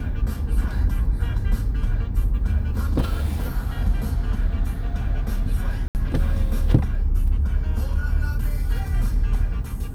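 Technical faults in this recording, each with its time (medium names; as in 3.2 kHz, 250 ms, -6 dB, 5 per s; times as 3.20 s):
5.88–5.95 s: dropout 69 ms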